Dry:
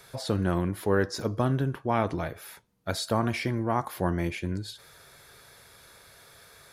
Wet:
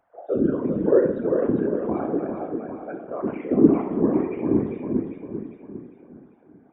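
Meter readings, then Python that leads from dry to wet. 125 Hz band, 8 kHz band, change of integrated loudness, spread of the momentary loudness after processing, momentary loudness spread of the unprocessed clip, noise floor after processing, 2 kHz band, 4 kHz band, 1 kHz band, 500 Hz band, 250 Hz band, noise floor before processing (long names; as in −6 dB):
−3.5 dB, below −35 dB, +5.5 dB, 16 LU, 11 LU, −54 dBFS, −8.0 dB, below −25 dB, −3.5 dB, +8.0 dB, +9.5 dB, −55 dBFS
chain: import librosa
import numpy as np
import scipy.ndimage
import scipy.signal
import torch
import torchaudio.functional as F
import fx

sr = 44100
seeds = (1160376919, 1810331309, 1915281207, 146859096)

y = fx.sine_speech(x, sr)
y = fx.tilt_shelf(y, sr, db=9.0, hz=670.0)
y = fx.rev_fdn(y, sr, rt60_s=0.76, lf_ratio=0.95, hf_ratio=0.75, size_ms=20.0, drr_db=-1.0)
y = fx.env_lowpass(y, sr, base_hz=1100.0, full_db=-11.5)
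y = fx.high_shelf(y, sr, hz=2700.0, db=-11.0)
y = fx.echo_feedback(y, sr, ms=399, feedback_pct=49, wet_db=-4.5)
y = fx.whisperise(y, sr, seeds[0])
y = y * librosa.db_to_amplitude(-5.5)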